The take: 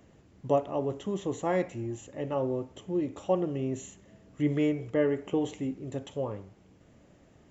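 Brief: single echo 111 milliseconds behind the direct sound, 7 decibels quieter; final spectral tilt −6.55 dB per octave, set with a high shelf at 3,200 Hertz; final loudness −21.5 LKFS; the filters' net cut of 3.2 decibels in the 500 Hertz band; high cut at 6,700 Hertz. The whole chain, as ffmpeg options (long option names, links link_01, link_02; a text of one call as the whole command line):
ffmpeg -i in.wav -af "lowpass=6700,equalizer=frequency=500:width_type=o:gain=-4,highshelf=frequency=3200:gain=4.5,aecho=1:1:111:0.447,volume=11dB" out.wav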